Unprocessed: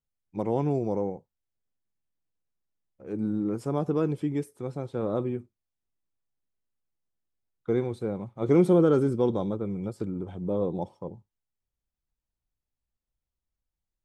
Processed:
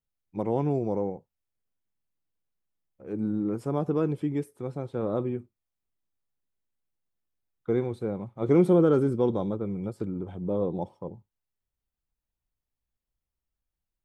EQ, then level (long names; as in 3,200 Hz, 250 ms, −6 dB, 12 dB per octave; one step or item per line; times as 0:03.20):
parametric band 6,300 Hz −5 dB 1.5 octaves
0.0 dB